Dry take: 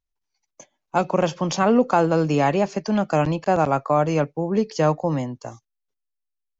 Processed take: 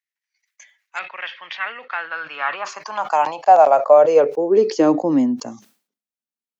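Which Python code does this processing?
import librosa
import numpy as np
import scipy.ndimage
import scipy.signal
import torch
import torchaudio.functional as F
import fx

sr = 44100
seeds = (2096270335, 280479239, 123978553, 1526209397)

y = fx.filter_sweep_highpass(x, sr, from_hz=1900.0, to_hz=220.0, start_s=1.89, end_s=5.48, q=5.5)
y = fx.ellip_bandpass(y, sr, low_hz=140.0, high_hz=3500.0, order=3, stop_db=40, at=(0.99, 2.65))
y = fx.sustainer(y, sr, db_per_s=140.0)
y = y * 10.0 ** (-1.5 / 20.0)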